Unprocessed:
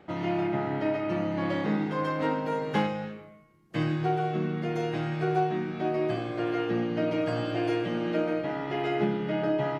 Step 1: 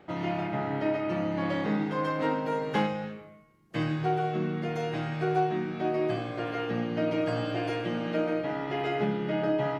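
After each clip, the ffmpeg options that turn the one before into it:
ffmpeg -i in.wav -af "bandreject=frequency=50:width_type=h:width=6,bandreject=frequency=100:width_type=h:width=6,bandreject=frequency=150:width_type=h:width=6,bandreject=frequency=200:width_type=h:width=6,bandreject=frequency=250:width_type=h:width=6,bandreject=frequency=300:width_type=h:width=6,bandreject=frequency=350:width_type=h:width=6" out.wav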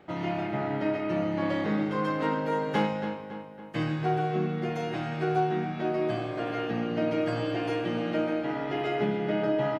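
ffmpeg -i in.wav -filter_complex "[0:a]asplit=2[link_01][link_02];[link_02]adelay=279,lowpass=frequency=3900:poles=1,volume=-10dB,asplit=2[link_03][link_04];[link_04]adelay=279,lowpass=frequency=3900:poles=1,volume=0.54,asplit=2[link_05][link_06];[link_06]adelay=279,lowpass=frequency=3900:poles=1,volume=0.54,asplit=2[link_07][link_08];[link_08]adelay=279,lowpass=frequency=3900:poles=1,volume=0.54,asplit=2[link_09][link_10];[link_10]adelay=279,lowpass=frequency=3900:poles=1,volume=0.54,asplit=2[link_11][link_12];[link_12]adelay=279,lowpass=frequency=3900:poles=1,volume=0.54[link_13];[link_01][link_03][link_05][link_07][link_09][link_11][link_13]amix=inputs=7:normalize=0" out.wav

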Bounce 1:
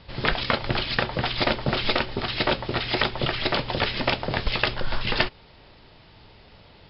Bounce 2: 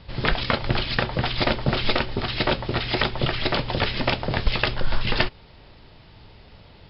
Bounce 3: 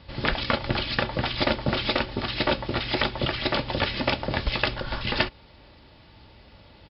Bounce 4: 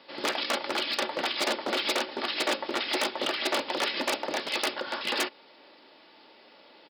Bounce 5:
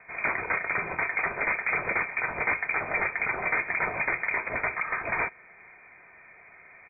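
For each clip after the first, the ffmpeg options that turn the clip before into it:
ffmpeg -i in.wav -af "lowshelf=frequency=190:gain=5.5" out.wav
ffmpeg -i in.wav -af "highpass=46,aecho=1:1:3.5:0.31,volume=-2dB" out.wav
ffmpeg -i in.wav -af "aeval=exprs='0.106*(abs(mod(val(0)/0.106+3,4)-2)-1)':channel_layout=same,highpass=frequency=290:width=0.5412,highpass=frequency=290:width=1.3066" out.wav
ffmpeg -i in.wav -filter_complex "[0:a]asplit=2[link_01][link_02];[link_02]alimiter=limit=-21.5dB:level=0:latency=1:release=33,volume=1dB[link_03];[link_01][link_03]amix=inputs=2:normalize=0,lowpass=frequency=2300:width_type=q:width=0.5098,lowpass=frequency=2300:width_type=q:width=0.6013,lowpass=frequency=2300:width_type=q:width=0.9,lowpass=frequency=2300:width_type=q:width=2.563,afreqshift=-2700,volume=-2dB" out.wav

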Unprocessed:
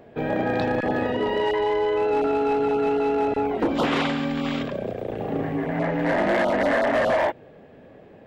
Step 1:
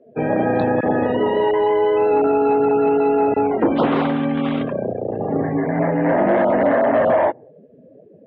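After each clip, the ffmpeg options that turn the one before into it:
ffmpeg -i in.wav -filter_complex "[0:a]afftdn=noise_reduction=29:noise_floor=-38,highpass=90,acrossover=split=290|1300[link_01][link_02][link_03];[link_03]acompressor=threshold=-41dB:ratio=6[link_04];[link_01][link_02][link_04]amix=inputs=3:normalize=0,volume=6dB" out.wav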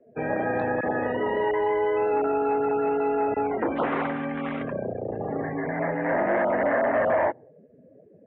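ffmpeg -i in.wav -filter_complex "[0:a]lowshelf=frequency=70:gain=11.5,acrossover=split=360|540[link_01][link_02][link_03];[link_01]alimiter=limit=-22dB:level=0:latency=1[link_04];[link_04][link_02][link_03]amix=inputs=3:normalize=0,lowpass=frequency=2000:width_type=q:width=2,volume=-7.5dB" out.wav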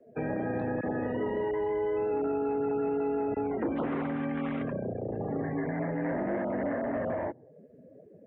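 ffmpeg -i in.wav -filter_complex "[0:a]acrossover=split=380[link_01][link_02];[link_02]acompressor=threshold=-38dB:ratio=4[link_03];[link_01][link_03]amix=inputs=2:normalize=0" out.wav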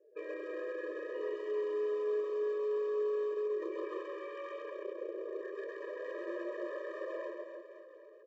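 ffmpeg -i in.wav -af "aresample=16000,asoftclip=type=hard:threshold=-27.5dB,aresample=44100,aecho=1:1:130|299|518.7|804.3|1176:0.631|0.398|0.251|0.158|0.1,afftfilt=real='re*eq(mod(floor(b*sr/1024/320),2),1)':imag='im*eq(mod(floor(b*sr/1024/320),2),1)':win_size=1024:overlap=0.75,volume=-5.5dB" out.wav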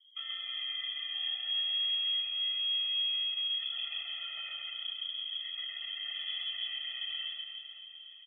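ffmpeg -i in.wav -af "aecho=1:1:402|804|1206|1608|2010:0.178|0.096|0.0519|0.028|0.0151,lowpass=frequency=3100:width_type=q:width=0.5098,lowpass=frequency=3100:width_type=q:width=0.6013,lowpass=frequency=3100:width_type=q:width=0.9,lowpass=frequency=3100:width_type=q:width=2.563,afreqshift=-3700,volume=2dB" out.wav

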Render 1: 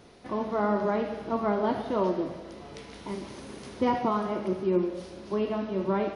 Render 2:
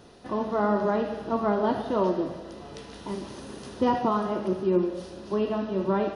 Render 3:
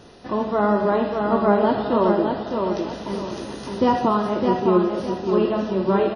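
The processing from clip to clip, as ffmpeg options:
ffmpeg -i in.wav -af "bandreject=frequency=2200:width=5.5,volume=2dB" out.wav
ffmpeg -i in.wav -af "aecho=1:1:609|1218|1827|2436:0.596|0.208|0.073|0.0255,volume=5dB" -ar 22050 -c:a wmav2 -b:a 32k out.wma

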